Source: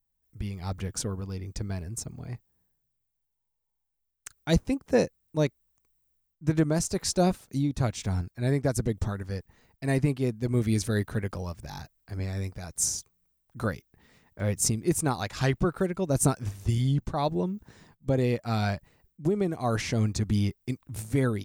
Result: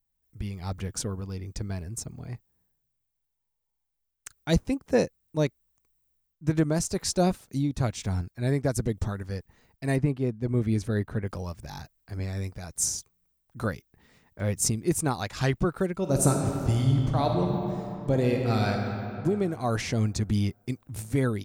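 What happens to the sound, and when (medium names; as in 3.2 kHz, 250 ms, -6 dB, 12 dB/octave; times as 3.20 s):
9.96–11.27 s: treble shelf 2.8 kHz -12 dB
15.97–18.72 s: reverb throw, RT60 2.9 s, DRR 1 dB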